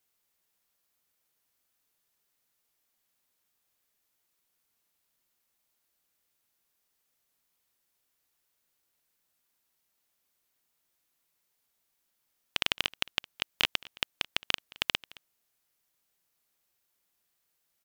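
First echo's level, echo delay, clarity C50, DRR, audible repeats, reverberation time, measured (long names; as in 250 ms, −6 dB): −22.0 dB, 218 ms, no reverb audible, no reverb audible, 1, no reverb audible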